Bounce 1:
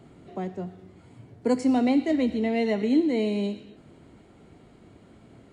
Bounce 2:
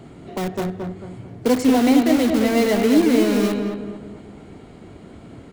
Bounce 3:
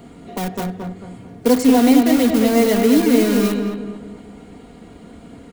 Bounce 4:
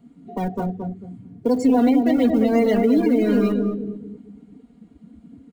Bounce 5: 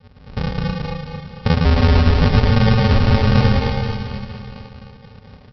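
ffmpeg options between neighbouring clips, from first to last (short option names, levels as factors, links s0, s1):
-filter_complex "[0:a]asplit=2[s0][s1];[s1]aeval=exprs='(mod(23.7*val(0)+1,2)-1)/23.7':c=same,volume=0.562[s2];[s0][s2]amix=inputs=2:normalize=0,asplit=2[s3][s4];[s4]adelay=222,lowpass=f=1500:p=1,volume=0.631,asplit=2[s5][s6];[s6]adelay=222,lowpass=f=1500:p=1,volume=0.44,asplit=2[s7][s8];[s8]adelay=222,lowpass=f=1500:p=1,volume=0.44,asplit=2[s9][s10];[s10]adelay=222,lowpass=f=1500:p=1,volume=0.44,asplit=2[s11][s12];[s12]adelay=222,lowpass=f=1500:p=1,volume=0.44,asplit=2[s13][s14];[s14]adelay=222,lowpass=f=1500:p=1,volume=0.44[s15];[s3][s5][s7][s9][s11][s13][s15]amix=inputs=7:normalize=0,volume=1.88"
-af "highshelf=f=9900:g=9.5,aecho=1:1:4.2:0.51"
-af "alimiter=limit=0.376:level=0:latency=1:release=116,afftdn=nr=20:nf=-27"
-af "aresample=11025,acrusher=samples=33:mix=1:aa=0.000001,aresample=44100,aecho=1:1:110|264|479.6|781.4|1204:0.631|0.398|0.251|0.158|0.1,volume=1.26"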